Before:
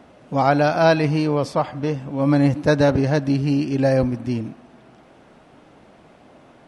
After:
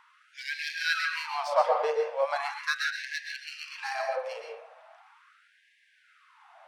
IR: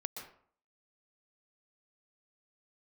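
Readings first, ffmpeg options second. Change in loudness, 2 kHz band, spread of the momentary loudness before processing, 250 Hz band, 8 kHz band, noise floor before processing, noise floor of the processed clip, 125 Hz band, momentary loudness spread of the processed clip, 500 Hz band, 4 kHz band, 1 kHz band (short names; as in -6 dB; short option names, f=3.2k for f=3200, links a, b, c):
-10.5 dB, -1.5 dB, 9 LU, under -40 dB, n/a, -50 dBFS, -65 dBFS, under -40 dB, 14 LU, -11.0 dB, -1.5 dB, -7.0 dB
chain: -filter_complex "[0:a]asplit=2[a][b];[b]adynamicsmooth=sensitivity=7.5:basefreq=3.4k,volume=2dB[c];[a][c]amix=inputs=2:normalize=0,bandreject=f=116.2:t=h:w=4,bandreject=f=232.4:t=h:w=4,bandreject=f=348.6:t=h:w=4,bandreject=f=464.8:t=h:w=4,bandreject=f=581:t=h:w=4,bandreject=f=697.2:t=h:w=4,bandreject=f=813.4:t=h:w=4,bandreject=f=929.6:t=h:w=4,bandreject=f=1.0458k:t=h:w=4,bandreject=f=1.162k:t=h:w=4,bandreject=f=1.2782k:t=h:w=4,bandreject=f=1.3944k:t=h:w=4,bandreject=f=1.5106k:t=h:w=4,bandreject=f=1.6268k:t=h:w=4,bandreject=f=1.743k:t=h:w=4,bandreject=f=1.8592k:t=h:w=4,bandreject=f=1.9754k:t=h:w=4,bandreject=f=2.0916k:t=h:w=4,bandreject=f=2.2078k:t=h:w=4,bandreject=f=2.324k:t=h:w=4,bandreject=f=2.4402k:t=h:w=4,bandreject=f=2.5564k:t=h:w=4,bandreject=f=2.6726k:t=h:w=4,bandreject=f=2.7888k:t=h:w=4,bandreject=f=2.905k:t=h:w=4,bandreject=f=3.0212k:t=h:w=4,bandreject=f=3.1374k:t=h:w=4,bandreject=f=3.2536k:t=h:w=4,bandreject=f=3.3698k:t=h:w=4,bandreject=f=3.486k:t=h:w=4,bandreject=f=3.6022k:t=h:w=4,bandreject=f=3.7184k:t=h:w=4,bandreject=f=3.8346k:t=h:w=4[d];[1:a]atrim=start_sample=2205[e];[d][e]afir=irnorm=-1:irlink=0,afftfilt=real='re*gte(b*sr/1024,420*pow(1600/420,0.5+0.5*sin(2*PI*0.39*pts/sr)))':imag='im*gte(b*sr/1024,420*pow(1600/420,0.5+0.5*sin(2*PI*0.39*pts/sr)))':win_size=1024:overlap=0.75,volume=-6dB"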